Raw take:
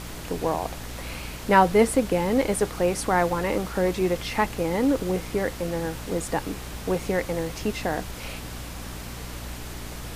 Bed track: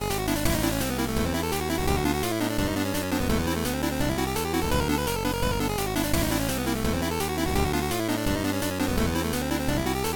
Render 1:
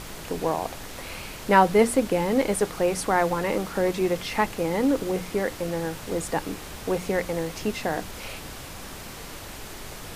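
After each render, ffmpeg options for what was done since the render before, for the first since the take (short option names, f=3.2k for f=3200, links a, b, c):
-af "bandreject=f=60:t=h:w=6,bandreject=f=120:t=h:w=6,bandreject=f=180:t=h:w=6,bandreject=f=240:t=h:w=6,bandreject=f=300:t=h:w=6"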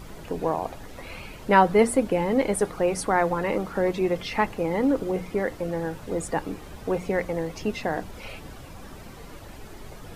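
-af "afftdn=nr=11:nf=-39"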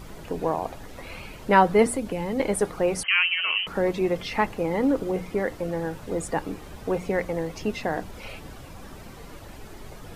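-filter_complex "[0:a]asettb=1/sr,asplit=3[a][b][c];[a]atrim=end=1.864[d];[b]atrim=start=1.86:end=2.4,asetpts=PTS-STARTPTS,afade=t=in:d=0.004:c=qsin,afade=t=out:st=0.536:d=0.004:c=qsin,acrossover=split=190|3000[e][f][g];[f]acompressor=threshold=-30dB:ratio=2.5:attack=3.2:release=140:knee=2.83:detection=peak[h];[e][h][g]amix=inputs=3:normalize=0[i];[c]atrim=start=2.396[j];[d][i]acrossfade=d=0.004:c1=hsin:c2=qsin[k];[k][j]acrossfade=d=0.004:c1=qsin:c2=hsin,asettb=1/sr,asplit=3[l][m][n];[l]atrim=end=3.034[o];[m]atrim=start=3.03:end=3.67,asetpts=PTS-STARTPTS,afade=t=in:d=0.004:c=qsin,afade=t=out:st=0.636:d=0.004:c=qsin,lowpass=f=2.7k:t=q:w=0.5098,lowpass=f=2.7k:t=q:w=0.6013,lowpass=f=2.7k:t=q:w=0.9,lowpass=f=2.7k:t=q:w=2.563,afreqshift=-3200[p];[n]atrim=start=3.666[q];[o][p]acrossfade=d=0.004:c1=hsin:c2=qsin[r];[r][q]acrossfade=d=0.004:c1=qsin:c2=hsin"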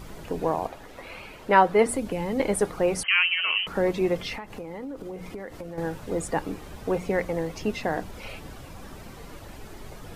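-filter_complex "[0:a]asettb=1/sr,asplit=3[a][b][c];[a]atrim=end=0.674[d];[b]atrim=start=0.67:end=1.89,asetpts=PTS-STARTPTS,afade=t=in:d=0.004:c=qsin,afade=t=out:st=1.216:d=0.004:c=qsin,bass=f=250:g=-8,treble=f=4k:g=-5[e];[c]atrim=start=1.886[f];[d][e]acrossfade=d=0.004:c1=hsin:c2=qsin[g];[g][f]acrossfade=d=0.004:c1=qsin:c2=hsin,asettb=1/sr,asplit=3[h][i][j];[h]atrim=end=4.344[k];[i]atrim=start=4.34:end=5.78,asetpts=PTS-STARTPTS,afade=t=in:d=0.004:c=qsin,afade=t=out:st=1.436:d=0.004:c=qsin,acompressor=threshold=-33dB:ratio=8:attack=3.2:release=140:knee=1:detection=peak[l];[j]atrim=start=5.776[m];[k][l]acrossfade=d=0.004:c1=hsin:c2=qsin[n];[n][m]acrossfade=d=0.004:c1=qsin:c2=hsin"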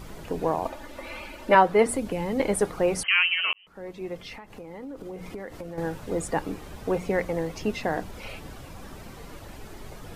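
-filter_complex "[0:a]asettb=1/sr,asplit=3[a][b][c];[a]atrim=end=0.654[d];[b]atrim=start=0.65:end=1.55,asetpts=PTS-STARTPTS,afade=t=in:d=0.004:c=qsin,afade=t=out:st=0.896:d=0.004:c=qsin,aecho=1:1:3.4:0.94,atrim=end_sample=39690[e];[c]atrim=start=1.546[f];[d][e]acrossfade=d=0.004:c1=hsin:c2=qsin[g];[g][f]acrossfade=d=0.004:c1=qsin:c2=hsin,asplit=2[h][i];[h]atrim=end=3.53,asetpts=PTS-STARTPTS,afade=t=out:st=3.526:d=0.004:c=hsin[j];[i]atrim=start=3.53,asetpts=PTS-STARTPTS,afade=t=in:d=1.8[k];[j][k]concat=n=2:v=0:a=1"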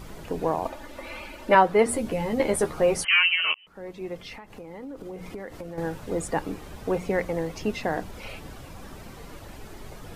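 -filter_complex "[0:a]asettb=1/sr,asplit=3[a][b][c];[a]atrim=end=1.864[d];[b]atrim=start=1.86:end=3.66,asetpts=PTS-STARTPTS,afade=t=in:d=0.004:c=qsin,afade=t=out:st=1.796:d=0.004:c=qsin,asplit=2[e][f];[f]adelay=13,volume=-4dB[g];[e][g]amix=inputs=2:normalize=0,atrim=end_sample=79380[h];[c]atrim=start=3.656[i];[d][h]acrossfade=d=0.004:c1=hsin:c2=qsin[j];[j][i]acrossfade=d=0.004:c1=qsin:c2=hsin"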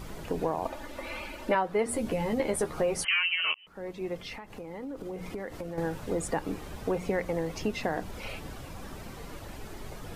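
-af "acompressor=threshold=-26dB:ratio=3"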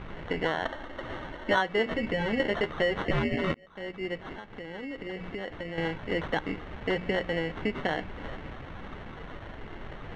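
-af "acrusher=samples=18:mix=1:aa=0.000001,lowpass=f=2.4k:t=q:w=2.1"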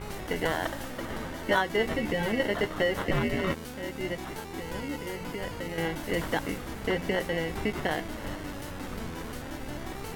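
-filter_complex "[1:a]volume=-13.5dB[a];[0:a][a]amix=inputs=2:normalize=0"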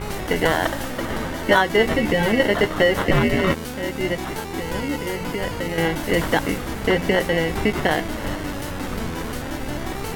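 -af "volume=9.5dB,alimiter=limit=-3dB:level=0:latency=1"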